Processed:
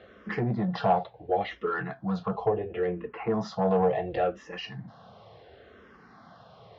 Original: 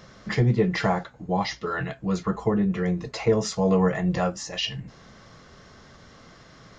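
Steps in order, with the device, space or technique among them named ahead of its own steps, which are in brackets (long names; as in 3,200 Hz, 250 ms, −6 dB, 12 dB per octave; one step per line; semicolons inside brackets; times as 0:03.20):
0:02.46–0:03.34: Chebyshev low-pass filter 3,100 Hz, order 4
barber-pole phaser into a guitar amplifier (frequency shifter mixed with the dry sound −0.71 Hz; soft clipping −20 dBFS, distortion −16 dB; loudspeaker in its box 85–3,700 Hz, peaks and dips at 150 Hz −5 dB, 280 Hz −3 dB, 450 Hz +5 dB, 740 Hz +9 dB, 2,100 Hz −5 dB)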